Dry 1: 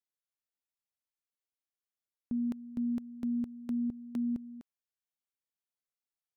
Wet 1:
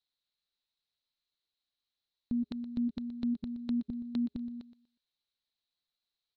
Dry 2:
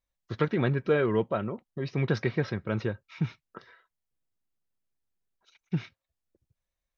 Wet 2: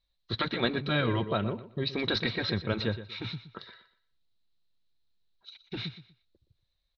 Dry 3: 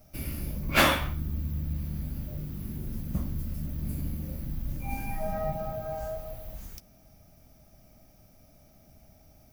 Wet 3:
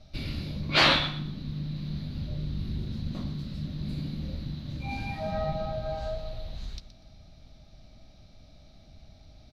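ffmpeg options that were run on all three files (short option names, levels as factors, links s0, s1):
-filter_complex "[0:a]lowpass=f=4000:t=q:w=9.2,lowshelf=f=110:g=8,asplit=2[s0][s1];[s1]aecho=0:1:121|242|363:0.2|0.0499|0.0125[s2];[s0][s2]amix=inputs=2:normalize=0,afftfilt=real='re*lt(hypot(re,im),0.398)':imag='im*lt(hypot(re,im),0.398)':win_size=1024:overlap=0.75"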